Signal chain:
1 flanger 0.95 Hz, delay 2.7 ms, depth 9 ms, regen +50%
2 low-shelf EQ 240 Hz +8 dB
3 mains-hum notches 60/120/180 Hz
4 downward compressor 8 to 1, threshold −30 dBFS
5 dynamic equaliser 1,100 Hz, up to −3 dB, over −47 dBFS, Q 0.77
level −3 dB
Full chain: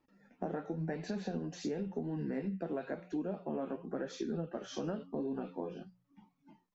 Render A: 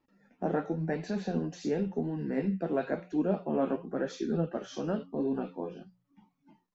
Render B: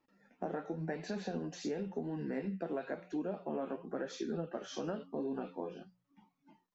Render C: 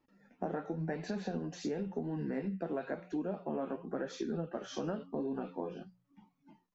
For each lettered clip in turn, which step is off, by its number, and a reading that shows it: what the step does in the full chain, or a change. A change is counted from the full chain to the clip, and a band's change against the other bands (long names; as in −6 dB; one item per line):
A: 4, average gain reduction 5.0 dB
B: 2, 125 Hz band −3.5 dB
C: 5, 1 kHz band +2.0 dB